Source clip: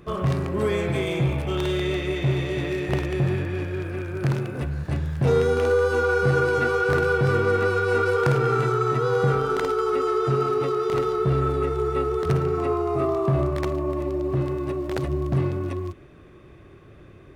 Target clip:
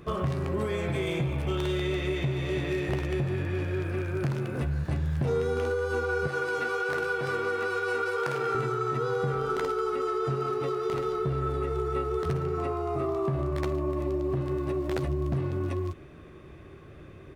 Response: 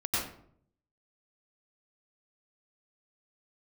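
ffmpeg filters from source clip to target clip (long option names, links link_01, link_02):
-filter_complex "[0:a]asettb=1/sr,asplit=3[link_01][link_02][link_03];[link_01]atrim=end=6.274[link_04];[link_02]atrim=start=6.27:end=8.55,asetpts=PTS-STARTPTS,afade=type=in:duration=0.004:curve=qsin,afade=type=out:start_time=2.276:duration=0.004:curve=qsin,highpass=frequency=640:poles=1[link_05];[link_03]atrim=start=8.546[link_06];[link_04][link_05]acrossfade=duration=0.004:curve1=hsin:curve2=qsin[link_07];[link_07][link_06]acrossfade=duration=0.004:curve1=qsin:curve2=hsin,acompressor=threshold=-26dB:ratio=6,asplit=2[link_08][link_09];[link_09]adelay=13,volume=-11dB[link_10];[link_08][link_10]amix=inputs=2:normalize=0"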